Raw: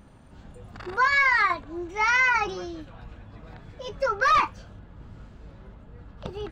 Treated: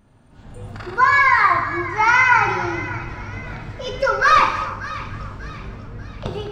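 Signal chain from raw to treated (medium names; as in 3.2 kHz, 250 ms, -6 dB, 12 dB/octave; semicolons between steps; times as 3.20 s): 0.99–2.99 s: ten-band graphic EQ 125 Hz +11 dB, 1 kHz +6 dB, 4 kHz -3 dB; level rider gain up to 15 dB; two-band feedback delay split 1.8 kHz, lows 295 ms, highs 590 ms, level -14.5 dB; gated-style reverb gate 330 ms falling, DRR 2.5 dB; trim -5.5 dB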